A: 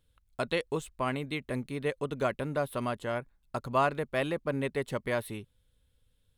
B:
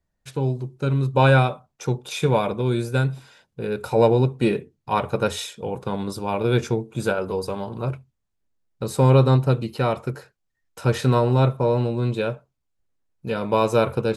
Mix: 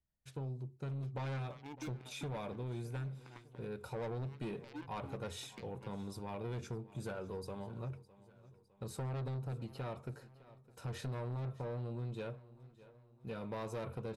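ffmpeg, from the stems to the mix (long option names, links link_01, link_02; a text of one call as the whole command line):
ffmpeg -i stem1.wav -i stem2.wav -filter_complex "[0:a]acompressor=threshold=-41dB:ratio=3,asplit=3[link_01][link_02][link_03];[link_01]bandpass=frequency=300:width_type=q:width=8,volume=0dB[link_04];[link_02]bandpass=frequency=870:width_type=q:width=8,volume=-6dB[link_05];[link_03]bandpass=frequency=2240:width_type=q:width=8,volume=-9dB[link_06];[link_04][link_05][link_06]amix=inputs=3:normalize=0,aeval=exprs='0.00531*(cos(1*acos(clip(val(0)/0.00531,-1,1)))-cos(1*PI/2))+0.00266*(cos(3*acos(clip(val(0)/0.00531,-1,1)))-cos(3*PI/2))':channel_layout=same,adelay=500,volume=2.5dB[link_07];[1:a]equalizer=frequency=85:width_type=o:width=2.2:gain=6,asoftclip=type=tanh:threshold=-17dB,volume=-16dB,asplit=3[link_08][link_09][link_10];[link_09]volume=-20.5dB[link_11];[link_10]apad=whole_len=303070[link_12];[link_07][link_12]sidechaincompress=threshold=-47dB:ratio=8:attack=16:release=183[link_13];[link_11]aecho=0:1:608|1216|1824|2432|3040|3648|4256:1|0.5|0.25|0.125|0.0625|0.0312|0.0156[link_14];[link_13][link_08][link_14]amix=inputs=3:normalize=0,acompressor=threshold=-38dB:ratio=6" out.wav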